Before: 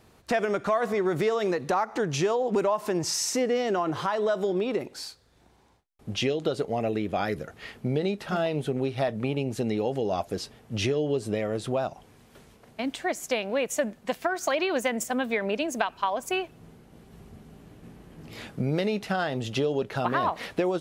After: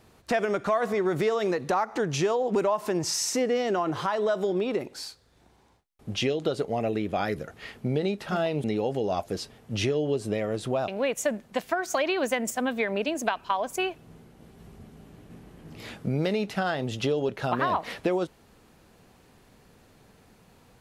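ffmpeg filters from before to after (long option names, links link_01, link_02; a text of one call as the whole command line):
ffmpeg -i in.wav -filter_complex "[0:a]asplit=3[link_01][link_02][link_03];[link_01]atrim=end=8.642[link_04];[link_02]atrim=start=9.648:end=11.892[link_05];[link_03]atrim=start=13.408[link_06];[link_04][link_05]acrossfade=duration=0.004:curve1=hsin:curve2=hsin[link_07];[link_07][link_06]acrossfade=duration=0.004:curve1=hsin:curve2=hsin" out.wav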